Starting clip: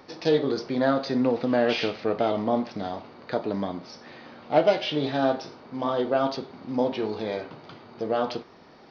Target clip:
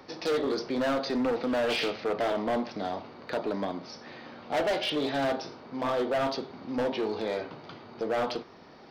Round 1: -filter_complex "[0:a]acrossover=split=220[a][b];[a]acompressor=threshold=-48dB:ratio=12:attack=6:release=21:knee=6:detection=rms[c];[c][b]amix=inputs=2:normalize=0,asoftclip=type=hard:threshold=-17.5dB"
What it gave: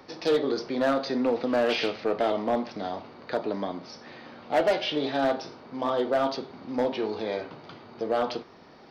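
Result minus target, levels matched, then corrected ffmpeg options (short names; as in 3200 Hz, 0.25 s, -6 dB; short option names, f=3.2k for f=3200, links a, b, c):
hard clip: distortion -7 dB
-filter_complex "[0:a]acrossover=split=220[a][b];[a]acompressor=threshold=-48dB:ratio=12:attack=6:release=21:knee=6:detection=rms[c];[c][b]amix=inputs=2:normalize=0,asoftclip=type=hard:threshold=-24dB"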